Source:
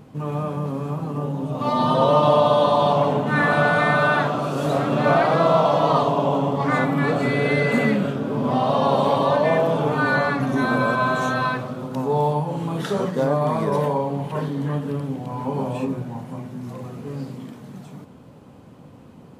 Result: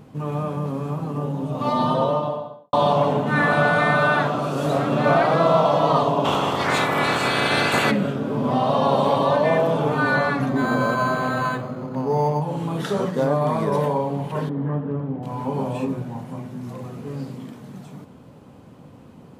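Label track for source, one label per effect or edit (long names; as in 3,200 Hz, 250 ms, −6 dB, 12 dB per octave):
1.660000	2.730000	fade out and dull
6.240000	7.900000	ceiling on every frequency bin ceiling under each frame's peak by 23 dB
10.490000	12.420000	linearly interpolated sample-rate reduction rate divided by 8×
14.490000	15.230000	low-pass filter 1,400 Hz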